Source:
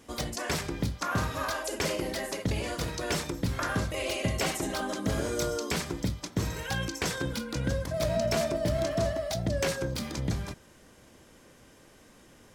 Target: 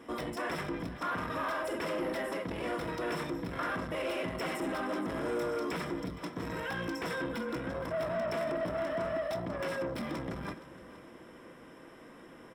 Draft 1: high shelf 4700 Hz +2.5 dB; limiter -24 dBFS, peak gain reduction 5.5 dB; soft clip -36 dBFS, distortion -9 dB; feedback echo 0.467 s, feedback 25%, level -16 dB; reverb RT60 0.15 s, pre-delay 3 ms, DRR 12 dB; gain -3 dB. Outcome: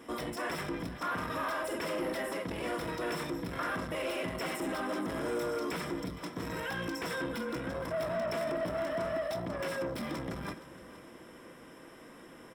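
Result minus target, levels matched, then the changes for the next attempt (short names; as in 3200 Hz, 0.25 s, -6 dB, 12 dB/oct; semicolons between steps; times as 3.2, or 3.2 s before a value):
8000 Hz band +4.5 dB
change: high shelf 4700 Hz -5 dB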